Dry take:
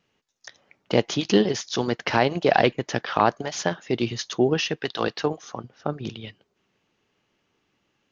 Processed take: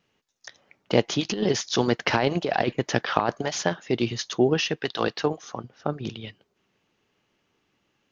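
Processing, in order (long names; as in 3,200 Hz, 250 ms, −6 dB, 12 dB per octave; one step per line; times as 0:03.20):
0:01.31–0:03.58: compressor whose output falls as the input rises −21 dBFS, ratio −0.5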